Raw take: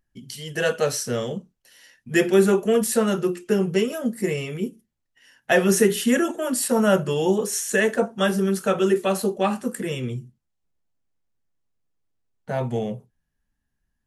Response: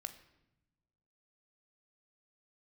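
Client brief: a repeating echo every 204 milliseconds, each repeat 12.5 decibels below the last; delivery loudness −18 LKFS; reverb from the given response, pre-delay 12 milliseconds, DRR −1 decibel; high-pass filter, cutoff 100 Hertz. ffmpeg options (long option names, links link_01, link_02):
-filter_complex "[0:a]highpass=100,aecho=1:1:204|408|612:0.237|0.0569|0.0137,asplit=2[link_01][link_02];[1:a]atrim=start_sample=2205,adelay=12[link_03];[link_02][link_03]afir=irnorm=-1:irlink=0,volume=4.5dB[link_04];[link_01][link_04]amix=inputs=2:normalize=0,volume=2dB"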